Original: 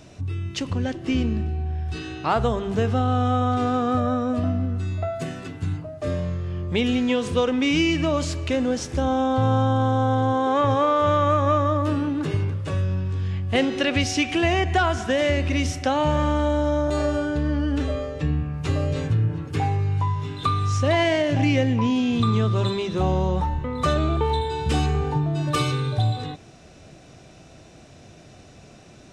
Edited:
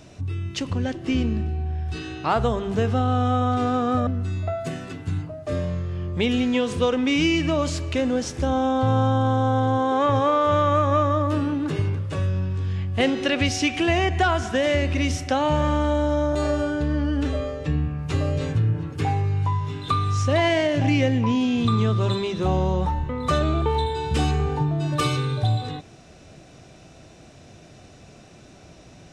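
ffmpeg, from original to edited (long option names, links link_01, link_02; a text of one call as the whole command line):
ffmpeg -i in.wav -filter_complex "[0:a]asplit=2[link_01][link_02];[link_01]atrim=end=4.072[link_03];[link_02]atrim=start=4.618[link_04];[link_03][link_04]acrossfade=duration=0.004:curve1=hsin:curve2=hsin" out.wav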